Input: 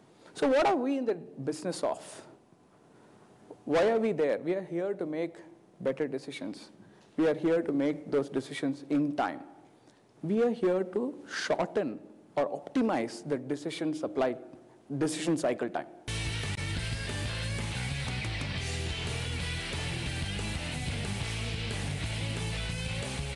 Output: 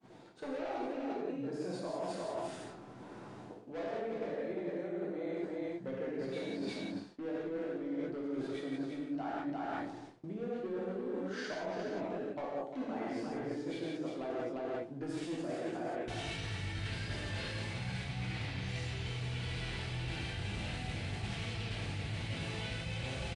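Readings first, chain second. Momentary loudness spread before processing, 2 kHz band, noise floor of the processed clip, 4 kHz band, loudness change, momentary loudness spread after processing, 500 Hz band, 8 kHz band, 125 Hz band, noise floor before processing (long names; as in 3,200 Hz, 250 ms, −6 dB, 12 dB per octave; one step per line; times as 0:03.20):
10 LU, −6.0 dB, −50 dBFS, −6.5 dB, −7.5 dB, 3 LU, −8.0 dB, −11.5 dB, −4.5 dB, −59 dBFS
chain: pitch vibrato 4.9 Hz 6.6 cents
on a send: single-tap delay 349 ms −6.5 dB
on the sum: reverb whose tail is shaped and stops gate 210 ms flat, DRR −6 dB
reversed playback
downward compressor 16 to 1, threshold −36 dBFS, peak gain reduction 24 dB
reversed playback
high-frequency loss of the air 76 metres
downward expander −51 dBFS
level +1 dB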